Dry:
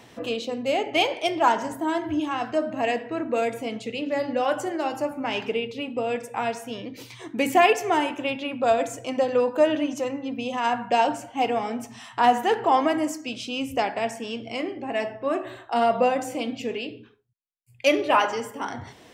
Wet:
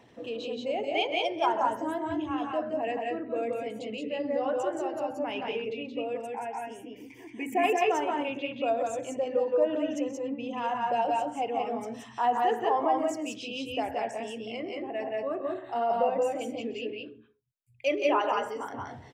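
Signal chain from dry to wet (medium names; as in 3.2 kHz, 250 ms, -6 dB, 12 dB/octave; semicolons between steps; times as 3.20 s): resonances exaggerated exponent 1.5; 6.27–7.64 s: static phaser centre 820 Hz, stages 8; multi-tap echo 131/172/186 ms -16.5/-3.5/-4 dB; trim -7.5 dB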